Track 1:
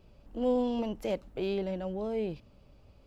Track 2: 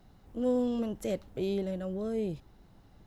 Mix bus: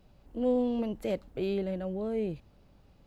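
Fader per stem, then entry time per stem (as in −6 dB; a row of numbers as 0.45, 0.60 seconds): −4.0, −5.5 decibels; 0.00, 0.00 seconds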